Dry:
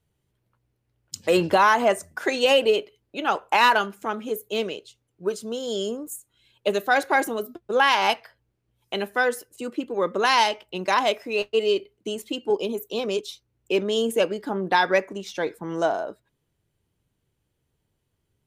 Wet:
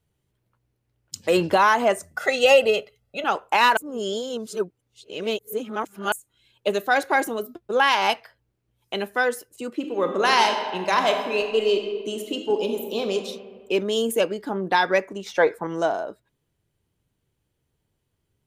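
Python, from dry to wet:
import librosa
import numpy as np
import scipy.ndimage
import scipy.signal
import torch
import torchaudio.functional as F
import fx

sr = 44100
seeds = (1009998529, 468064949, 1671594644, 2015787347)

y = fx.comb(x, sr, ms=1.5, depth=0.92, at=(2.14, 3.24))
y = fx.reverb_throw(y, sr, start_s=9.73, length_s=3.41, rt60_s=1.6, drr_db=4.5)
y = fx.high_shelf(y, sr, hz=11000.0, db=10.0, at=(13.8, 14.21))
y = fx.band_shelf(y, sr, hz=950.0, db=9.5, octaves=2.6, at=(15.26, 15.67))
y = fx.edit(y, sr, fx.reverse_span(start_s=3.77, length_s=2.35), tone=tone)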